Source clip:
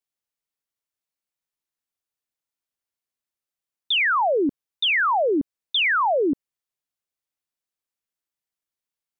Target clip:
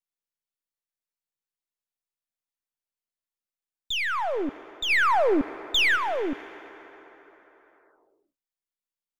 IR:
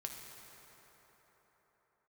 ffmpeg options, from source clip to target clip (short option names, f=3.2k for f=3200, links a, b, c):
-filter_complex "[0:a]aeval=exprs='if(lt(val(0),0),0.447*val(0),val(0))':c=same,asplit=3[a][b][c];[a]afade=t=out:st=4.89:d=0.02[d];[b]acontrast=71,afade=t=in:st=4.89:d=0.02,afade=t=out:st=5.95:d=0.02[e];[c]afade=t=in:st=5.95:d=0.02[f];[d][e][f]amix=inputs=3:normalize=0,asplit=2[g][h];[1:a]atrim=start_sample=2205[i];[h][i]afir=irnorm=-1:irlink=0,volume=-8dB[j];[g][j]amix=inputs=2:normalize=0,volume=-6.5dB"